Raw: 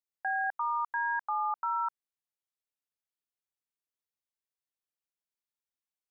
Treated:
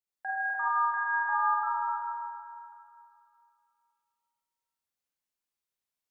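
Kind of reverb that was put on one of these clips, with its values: Schroeder reverb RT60 2.5 s, combs from 32 ms, DRR -7 dB; gain -4.5 dB

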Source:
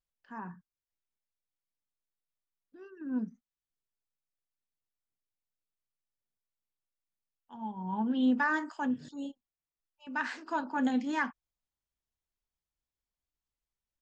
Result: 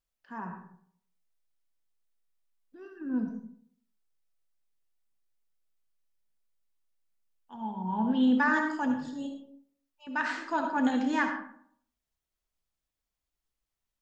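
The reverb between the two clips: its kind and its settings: digital reverb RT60 0.62 s, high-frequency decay 0.5×, pre-delay 30 ms, DRR 4 dB; gain +2.5 dB

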